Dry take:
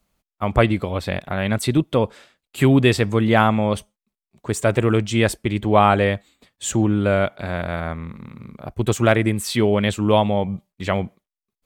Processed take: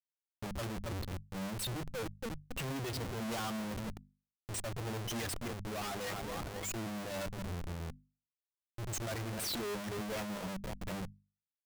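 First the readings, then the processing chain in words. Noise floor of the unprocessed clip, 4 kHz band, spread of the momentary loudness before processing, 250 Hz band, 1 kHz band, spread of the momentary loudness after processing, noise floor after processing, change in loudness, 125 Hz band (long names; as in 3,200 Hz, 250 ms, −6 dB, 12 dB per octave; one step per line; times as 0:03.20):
below −85 dBFS, −13.0 dB, 13 LU, −21.0 dB, −21.0 dB, 7 LU, below −85 dBFS, −19.5 dB, −20.0 dB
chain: spectral dynamics exaggerated over time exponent 3
repeating echo 270 ms, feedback 33%, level −22 dB
tube saturation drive 37 dB, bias 0.3
sound drawn into the spectrogram rise, 0:06.12–0:07.00, 660–4,900 Hz −49 dBFS
rotating-speaker cabinet horn 1.1 Hz
comparator with hysteresis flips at −49.5 dBFS
mains-hum notches 50/100/150/200/250 Hz
brickwall limiter −43 dBFS, peak gain reduction 6 dB
level +8.5 dB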